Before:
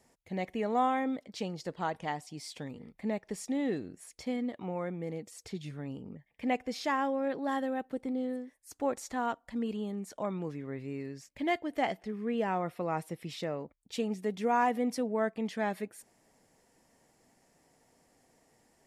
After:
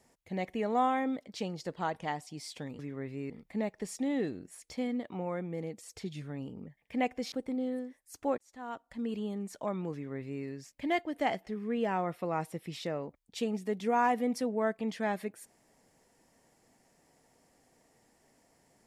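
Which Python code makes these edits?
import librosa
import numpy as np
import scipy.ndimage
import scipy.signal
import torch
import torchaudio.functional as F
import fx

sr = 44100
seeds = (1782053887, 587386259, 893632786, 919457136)

y = fx.edit(x, sr, fx.cut(start_s=6.81, length_s=1.08),
    fx.fade_in_span(start_s=8.95, length_s=0.81),
    fx.duplicate(start_s=10.5, length_s=0.51, to_s=2.79), tone=tone)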